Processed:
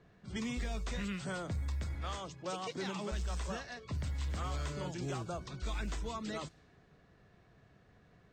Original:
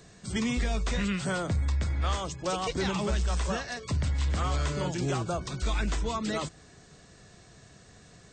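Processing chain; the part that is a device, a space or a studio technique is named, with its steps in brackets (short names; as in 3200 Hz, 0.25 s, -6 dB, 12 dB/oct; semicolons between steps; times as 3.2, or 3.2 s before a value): 1.94–3.11 HPF 65 Hz -> 180 Hz 24 dB/oct; cassette deck with a dynamic noise filter (white noise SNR 32 dB; low-pass opened by the level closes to 2000 Hz, open at -24 dBFS); gain -9 dB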